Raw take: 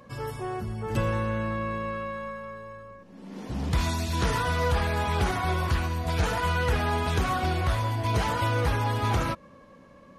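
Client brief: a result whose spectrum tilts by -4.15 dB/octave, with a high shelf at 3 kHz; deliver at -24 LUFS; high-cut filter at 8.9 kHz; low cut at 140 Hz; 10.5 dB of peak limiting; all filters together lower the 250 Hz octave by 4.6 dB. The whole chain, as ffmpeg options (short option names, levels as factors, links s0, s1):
-af "highpass=140,lowpass=8900,equalizer=f=250:t=o:g=-5.5,highshelf=f=3000:g=4,volume=3.16,alimiter=limit=0.178:level=0:latency=1"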